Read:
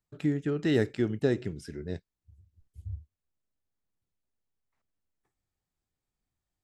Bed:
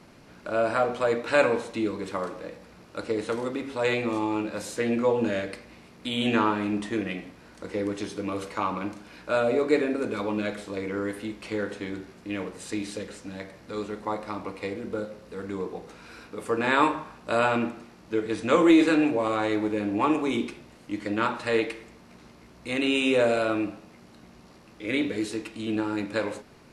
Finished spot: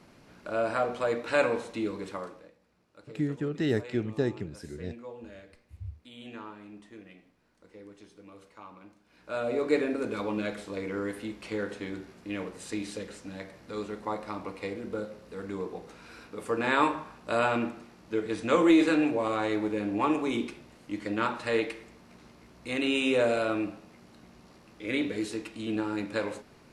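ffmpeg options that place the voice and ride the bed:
ffmpeg -i stem1.wav -i stem2.wav -filter_complex "[0:a]adelay=2950,volume=-2dB[link_01];[1:a]volume=13dB,afade=type=out:start_time=2.01:duration=0.52:silence=0.158489,afade=type=in:start_time=9.06:duration=0.67:silence=0.141254[link_02];[link_01][link_02]amix=inputs=2:normalize=0" out.wav

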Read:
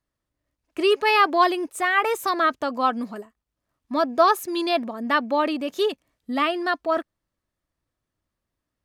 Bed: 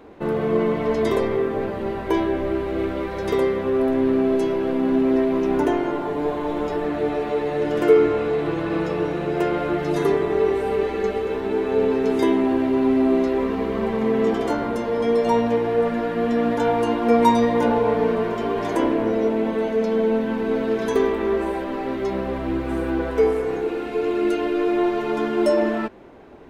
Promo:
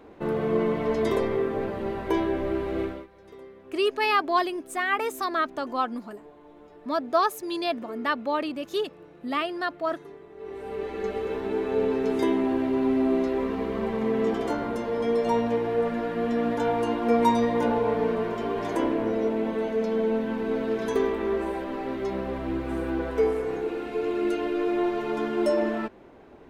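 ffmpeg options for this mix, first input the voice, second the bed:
ffmpeg -i stem1.wav -i stem2.wav -filter_complex "[0:a]adelay=2950,volume=-5dB[link_01];[1:a]volume=16.5dB,afade=type=out:start_time=2.8:duration=0.27:silence=0.0841395,afade=type=in:start_time=10.36:duration=0.9:silence=0.0944061[link_02];[link_01][link_02]amix=inputs=2:normalize=0" out.wav

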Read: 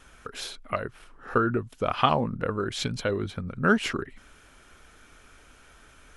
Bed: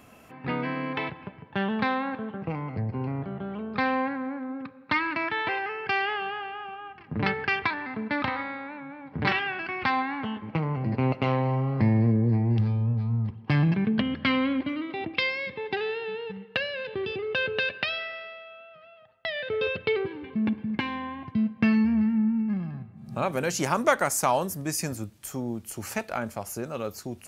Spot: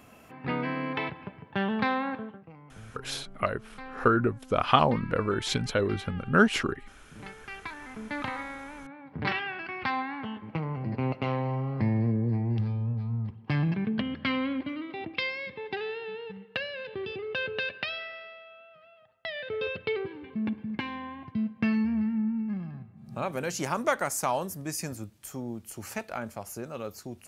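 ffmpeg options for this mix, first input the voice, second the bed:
ffmpeg -i stem1.wav -i stem2.wav -filter_complex "[0:a]adelay=2700,volume=1dB[link_01];[1:a]volume=12.5dB,afade=type=out:start_time=2.13:duration=0.29:silence=0.141254,afade=type=in:start_time=7.44:duration=0.93:silence=0.211349[link_02];[link_01][link_02]amix=inputs=2:normalize=0" out.wav

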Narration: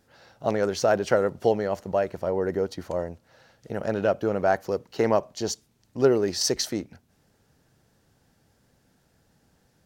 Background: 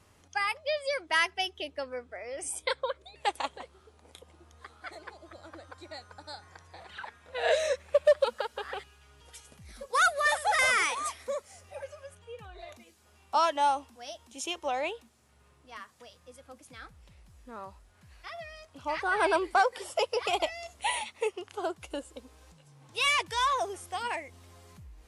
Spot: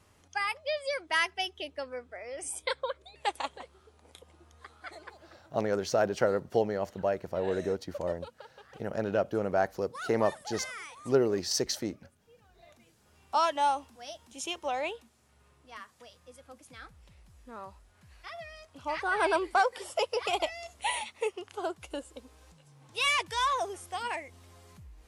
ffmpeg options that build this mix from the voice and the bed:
ffmpeg -i stem1.wav -i stem2.wav -filter_complex "[0:a]adelay=5100,volume=-5dB[link_01];[1:a]volume=14dB,afade=type=out:start_time=5.02:duration=0.55:silence=0.177828,afade=type=in:start_time=12.53:duration=0.79:silence=0.16788[link_02];[link_01][link_02]amix=inputs=2:normalize=0" out.wav

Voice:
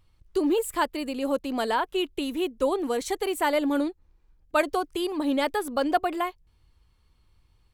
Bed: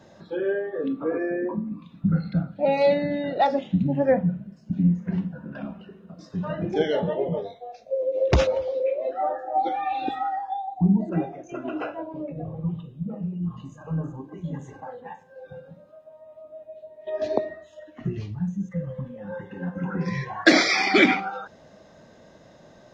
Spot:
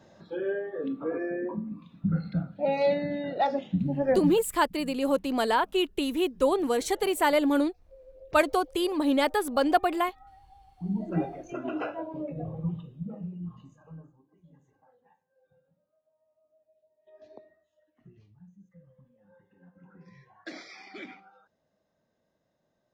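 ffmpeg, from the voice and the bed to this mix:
ffmpeg -i stem1.wav -i stem2.wav -filter_complex "[0:a]adelay=3800,volume=1dB[link_01];[1:a]volume=20dB,afade=type=out:start_time=4.23:duration=0.24:silence=0.0794328,afade=type=in:start_time=10.77:duration=0.45:silence=0.0562341,afade=type=out:start_time=12.44:duration=1.69:silence=0.0630957[link_02];[link_01][link_02]amix=inputs=2:normalize=0" out.wav

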